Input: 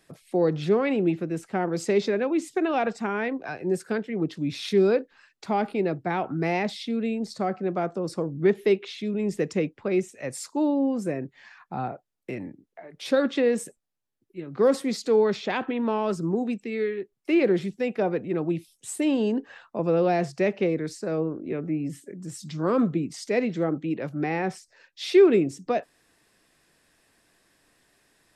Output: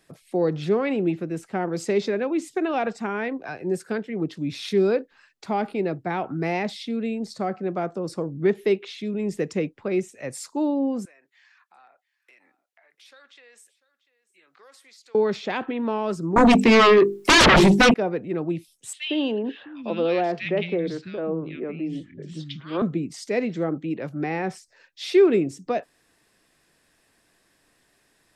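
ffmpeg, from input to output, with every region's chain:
-filter_complex "[0:a]asettb=1/sr,asplit=3[s0][s1][s2];[s0]atrim=end=11.054[s3];[s1]atrim=start=11.05:end=15.15,asetpts=PTS-STARTPTS,afade=t=in:d=0.004:c=qsin,afade=t=out:st=4.096:d=0.004:c=qsin,highpass=1400,acompressor=threshold=0.00141:ratio=2.5:attack=3.2:release=140:knee=1:detection=peak,aecho=1:1:693:0.112,atrim=end_sample=180810[s4];[s2]atrim=start=15.146[s5];[s3][s4]acrossfade=d=0.004:c1=hsin:c2=qsin[s6];[s6][s5]acrossfade=d=0.004:c1=qsin:c2=hsin,asettb=1/sr,asplit=3[s7][s8][s9];[s7]atrim=end=16.364[s10];[s8]atrim=start=16.36:end=17.94,asetpts=PTS-STARTPTS,afade=t=in:d=0.004:c=qsin,afade=t=out:st=1.576:d=0.004:c=qsin,highshelf=f=9600:g=2.5,bandreject=f=50:t=h:w=6,bandreject=f=100:t=h:w=6,bandreject=f=150:t=h:w=6,bandreject=f=200:t=h:w=6,bandreject=f=250:t=h:w=6,bandreject=f=300:t=h:w=6,bandreject=f=350:t=h:w=6,bandreject=f=400:t=h:w=6,bandreject=f=450:t=h:w=6,aeval=exprs='0.299*sin(PI/2*7.94*val(0)/0.299)':c=same[s11];[s9]atrim=start=17.936[s12];[s10][s11]acrossfade=d=0.004:c1=hsin:c2=qsin[s13];[s13][s12]acrossfade=d=0.004:c1=qsin:c2=hsin,asettb=1/sr,asplit=3[s14][s15][s16];[s14]atrim=end=18.934[s17];[s15]atrim=start=18.93:end=22.82,asetpts=PTS-STARTPTS,afade=t=in:d=0.004:c=qsin,afade=t=out:st=3.886:d=0.004:c=qsin,lowpass=f=3300:t=q:w=4.3,acrossover=split=190|1700[s18][s19][s20];[s19]adelay=110[s21];[s18]adelay=660[s22];[s22][s21][s20]amix=inputs=3:normalize=0,atrim=end_sample=171549[s23];[s16]atrim=start=22.816[s24];[s17][s23]acrossfade=d=0.004:c1=hsin:c2=qsin[s25];[s25][s24]acrossfade=d=0.004:c1=qsin:c2=hsin"

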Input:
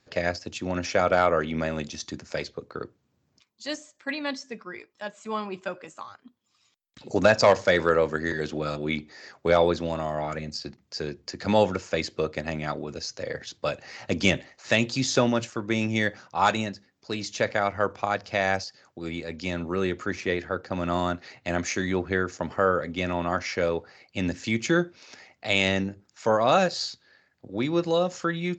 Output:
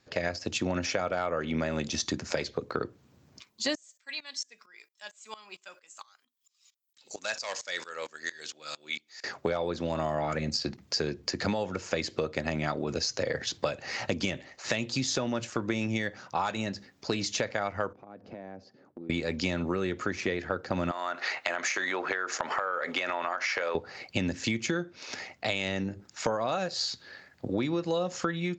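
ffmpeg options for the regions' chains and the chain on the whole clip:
-filter_complex "[0:a]asettb=1/sr,asplit=3[s0][s1][s2];[s0]atrim=end=3.754[s3];[s1]atrim=start=3.75:end=9.24,asetpts=PTS-STARTPTS,afade=t=in:d=0.004:c=qsin,afade=t=out:st=5.486:d=0.004:c=qsin,aderivative,aeval=exprs='val(0)*pow(10,-20*if(lt(mod(-4.4*n/s,1),2*abs(-4.4)/1000),1-mod(-4.4*n/s,1)/(2*abs(-4.4)/1000),(mod(-4.4*n/s,1)-2*abs(-4.4)/1000)/(1-2*abs(-4.4)/1000))/20)':c=same[s4];[s2]atrim=start=9.236[s5];[s3][s4]acrossfade=d=0.004:c1=hsin:c2=qsin[s6];[s6][s5]acrossfade=d=0.004:c1=qsin:c2=hsin,asettb=1/sr,asplit=3[s7][s8][s9];[s7]atrim=end=17.934[s10];[s8]atrim=start=17.93:end=19.1,asetpts=PTS-STARTPTS,afade=t=in:d=0.004:c=qsin,afade=t=out:st=1.166:d=0.004:c=qsin,bandpass=f=270:t=q:w=1.7,acompressor=threshold=0.00282:ratio=6:attack=3.2:release=140:knee=1:detection=peak[s11];[s9]atrim=start=19.096[s12];[s10][s11]acrossfade=d=0.004:c1=hsin:c2=qsin[s13];[s13][s12]acrossfade=d=0.004:c1=qsin:c2=hsin,asettb=1/sr,asplit=3[s14][s15][s16];[s14]atrim=end=20.914[s17];[s15]atrim=start=20.91:end=23.75,asetpts=PTS-STARTPTS,afade=t=in:d=0.004:c=qsin,afade=t=out:st=2.836:d=0.004:c=qsin,highpass=510,equalizer=f=1400:w=0.57:g=7.5,acompressor=threshold=0.0282:ratio=6:attack=3.2:release=140:knee=1:detection=peak[s18];[s16]atrim=start=23.746[s19];[s17][s18]acrossfade=d=0.004:c1=hsin:c2=qsin[s20];[s20][s19]acrossfade=d=0.004:c1=qsin:c2=hsin,dynaudnorm=f=110:g=5:m=3.55,alimiter=limit=0.447:level=0:latency=1:release=477,acompressor=threshold=0.0447:ratio=6"

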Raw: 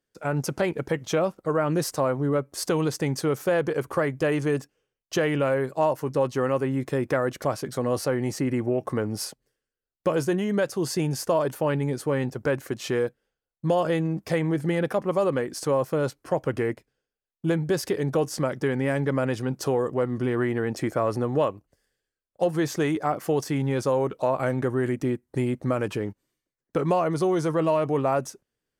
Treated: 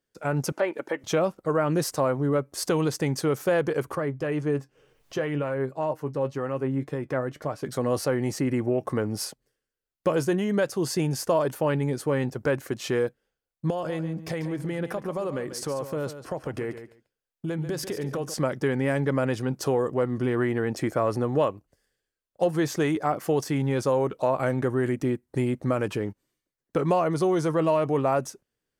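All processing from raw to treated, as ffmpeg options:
-filter_complex "[0:a]asettb=1/sr,asplit=3[s0][s1][s2];[s0]atrim=end=0.524[s3];[s1]atrim=start=0.52:end=1.04,asetpts=PTS-STARTPTS,afade=t=in:d=0.004:c=qsin,afade=t=out:st=0.516:d=0.004:c=qsin,acrossover=split=2900[s4][s5];[s5]acompressor=threshold=0.00158:ratio=4:attack=1:release=60[s6];[s4][s6]amix=inputs=2:normalize=0,highpass=390,aecho=1:1:3.4:0.34,atrim=end_sample=22932[s7];[s2]atrim=start=1.036[s8];[s3][s7]acrossfade=d=0.004:c1=hsin:c2=qsin[s9];[s9][s8]acrossfade=d=0.004:c1=qsin:c2=hsin,asettb=1/sr,asplit=3[s10][s11][s12];[s10]atrim=end=3.954[s13];[s11]atrim=start=3.95:end=7.63,asetpts=PTS-STARTPTS,afade=t=in:d=0.004:c=qsin,afade=t=out:st=3.676:d=0.004:c=qsin,highshelf=f=3200:g=-8,acompressor=mode=upward:threshold=0.0178:ratio=2.5:attack=3.2:release=140:knee=2.83:detection=peak,flanger=delay=6.3:depth=1.5:regen=63:speed=2:shape=triangular[s14];[s12]atrim=start=7.626[s15];[s13][s14]acrossfade=d=0.004:c1=hsin:c2=qsin[s16];[s16][s15]acrossfade=d=0.004:c1=qsin:c2=hsin,asettb=1/sr,asplit=3[s17][s18][s19];[s17]atrim=end=13.704[s20];[s18]atrim=start=13.7:end=18.34,asetpts=PTS-STARTPTS,afade=t=in:d=0.004:c=qsin,afade=t=out:st=4.636:d=0.004:c=qsin,acompressor=threshold=0.0398:ratio=3:attack=3.2:release=140:knee=1:detection=peak,aecho=1:1:141|282:0.282|0.0423,atrim=end_sample=204624[s21];[s19]atrim=start=18.336[s22];[s20][s21]acrossfade=d=0.004:c1=hsin:c2=qsin[s23];[s23][s22]acrossfade=d=0.004:c1=qsin:c2=hsin"

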